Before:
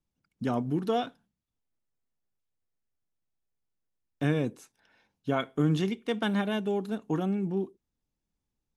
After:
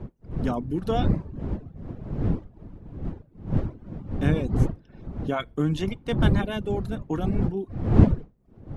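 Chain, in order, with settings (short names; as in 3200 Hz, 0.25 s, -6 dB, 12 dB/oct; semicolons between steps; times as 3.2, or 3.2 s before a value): wind noise 180 Hz -27 dBFS; reverb removal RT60 0.54 s; gain +1.5 dB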